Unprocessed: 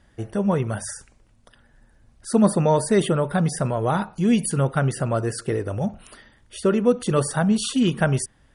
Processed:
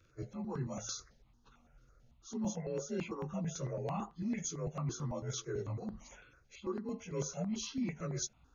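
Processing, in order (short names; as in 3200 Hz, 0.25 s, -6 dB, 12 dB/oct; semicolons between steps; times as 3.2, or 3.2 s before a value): inharmonic rescaling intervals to 89%; reverse; compressor 6:1, threshold -29 dBFS, peak gain reduction 15 dB; reverse; step phaser 9 Hz 210–2300 Hz; gain -3.5 dB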